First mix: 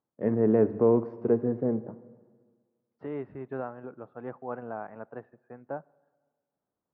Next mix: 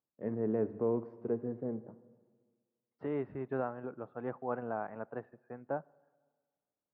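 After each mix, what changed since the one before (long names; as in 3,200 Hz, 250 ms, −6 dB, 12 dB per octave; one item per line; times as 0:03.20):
first voice −10.0 dB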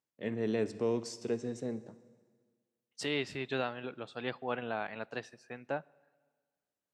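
master: remove low-pass filter 1,300 Hz 24 dB per octave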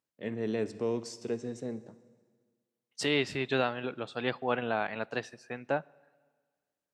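second voice +5.5 dB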